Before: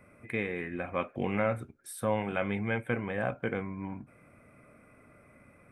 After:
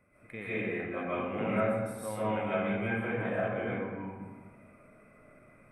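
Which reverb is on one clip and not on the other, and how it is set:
comb and all-pass reverb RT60 1.4 s, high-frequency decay 0.5×, pre-delay 100 ms, DRR −10 dB
level −10.5 dB

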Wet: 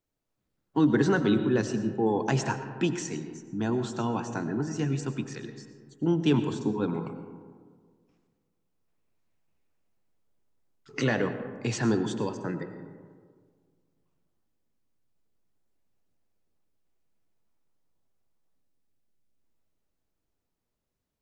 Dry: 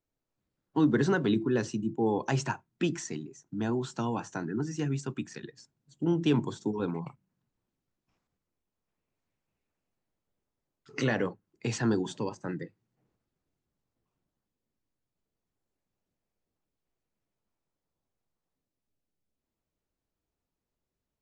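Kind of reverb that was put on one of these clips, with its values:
comb and all-pass reverb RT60 1.8 s, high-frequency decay 0.35×, pre-delay 60 ms, DRR 9 dB
level +2 dB

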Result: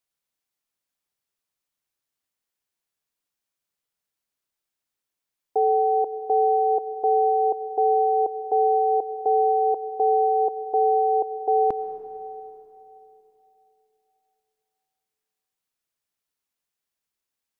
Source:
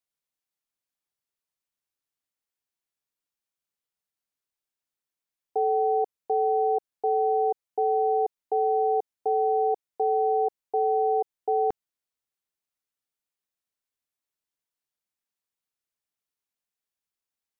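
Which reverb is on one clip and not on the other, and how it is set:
comb and all-pass reverb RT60 3.3 s, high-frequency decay 0.8×, pre-delay 65 ms, DRR 11.5 dB
level +4 dB

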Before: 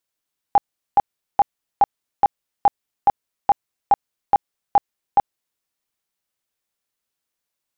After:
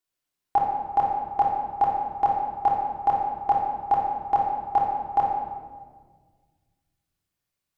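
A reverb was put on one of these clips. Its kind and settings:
rectangular room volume 1,700 cubic metres, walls mixed, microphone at 3.3 metres
level −7 dB

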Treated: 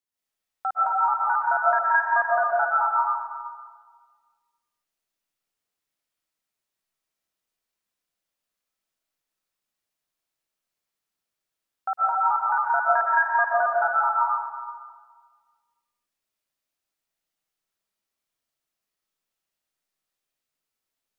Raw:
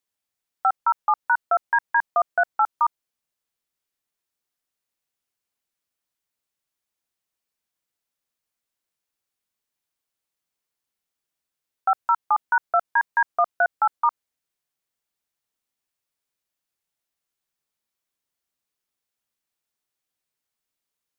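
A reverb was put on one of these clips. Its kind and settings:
comb and all-pass reverb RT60 1.6 s, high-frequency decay 0.8×, pre-delay 100 ms, DRR −8 dB
level −7.5 dB

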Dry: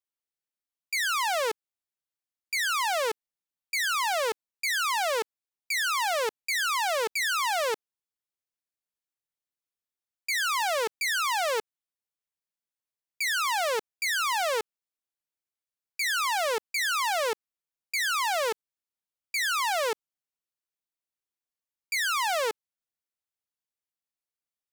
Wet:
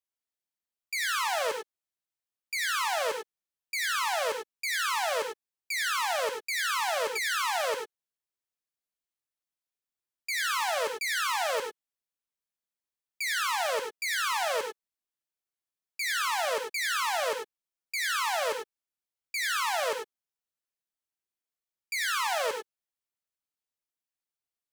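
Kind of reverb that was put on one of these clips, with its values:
reverb whose tail is shaped and stops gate 120 ms rising, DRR 3.5 dB
level −3.5 dB

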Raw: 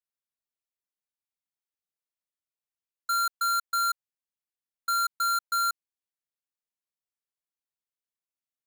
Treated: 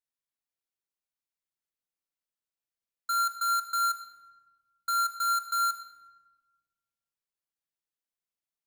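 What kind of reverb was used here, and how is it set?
rectangular room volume 1,100 cubic metres, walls mixed, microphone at 0.73 metres
level −2.5 dB

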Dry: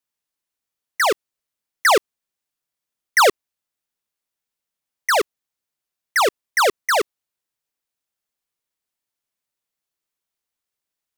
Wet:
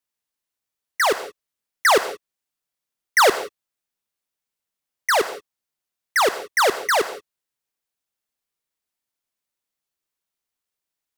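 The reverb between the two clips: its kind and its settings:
reverb whose tail is shaped and stops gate 200 ms flat, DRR 11.5 dB
level −1 dB

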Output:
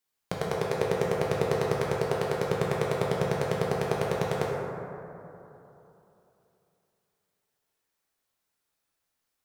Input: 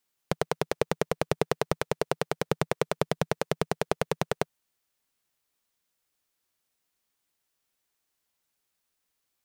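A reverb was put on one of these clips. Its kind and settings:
dense smooth reverb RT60 3.1 s, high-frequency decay 0.3×, DRR −4.5 dB
level −5 dB

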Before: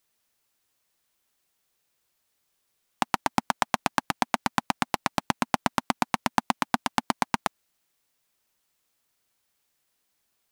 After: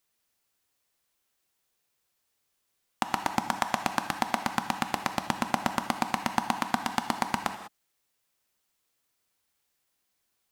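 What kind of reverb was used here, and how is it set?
reverb whose tail is shaped and stops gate 220 ms flat, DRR 7 dB
level −3 dB

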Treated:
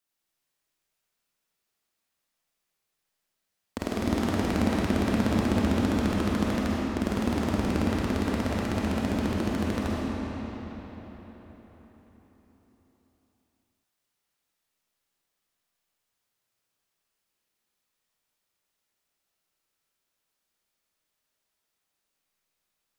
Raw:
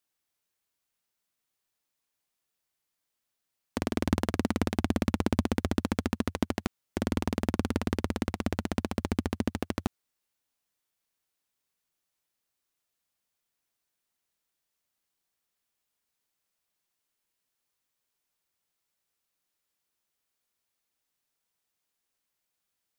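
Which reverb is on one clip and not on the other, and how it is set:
comb and all-pass reverb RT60 4.7 s, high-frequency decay 0.75×, pre-delay 10 ms, DRR −5.5 dB
level −2.5 dB

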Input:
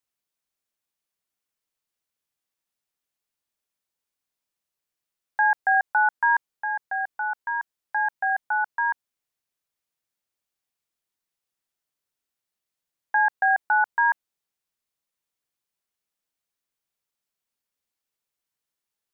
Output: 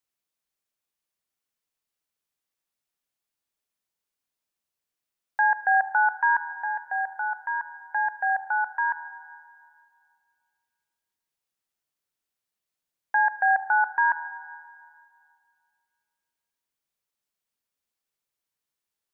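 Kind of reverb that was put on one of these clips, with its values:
spring reverb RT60 2.2 s, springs 36/40/49 ms, chirp 75 ms, DRR 13.5 dB
level −1 dB

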